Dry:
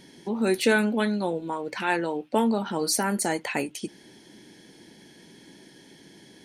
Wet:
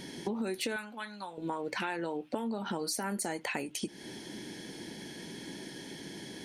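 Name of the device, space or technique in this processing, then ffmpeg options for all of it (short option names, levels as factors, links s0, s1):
serial compression, leveller first: -filter_complex "[0:a]acompressor=threshold=0.0501:ratio=3,acompressor=threshold=0.0112:ratio=6,asettb=1/sr,asplit=3[s0][s1][s2];[s0]atrim=end=0.764[s3];[s1]atrim=start=0.76:end=1.38,asetpts=PTS-STARTPTS,afade=t=in:d=0.004:c=qsin,afade=t=out:st=0.616:d=0.004:c=qsin,lowshelf=f=670:t=q:w=1.5:g=-12.5[s4];[s2]atrim=start=1.376[s5];[s3][s4]acrossfade=d=0.004:c1=hsin:c2=qsin[s6];[s6][s5]acrossfade=d=0.004:c1=qsin:c2=hsin,volume=2.11"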